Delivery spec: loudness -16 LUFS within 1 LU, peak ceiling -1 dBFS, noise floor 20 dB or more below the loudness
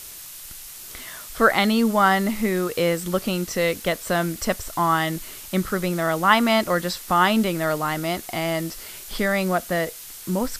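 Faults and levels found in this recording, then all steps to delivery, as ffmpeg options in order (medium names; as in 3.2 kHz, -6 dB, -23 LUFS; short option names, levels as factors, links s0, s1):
noise floor -39 dBFS; noise floor target -42 dBFS; loudness -22.0 LUFS; peak level -2.5 dBFS; loudness target -16.0 LUFS
-> -af "afftdn=nr=6:nf=-39"
-af "volume=2,alimiter=limit=0.891:level=0:latency=1"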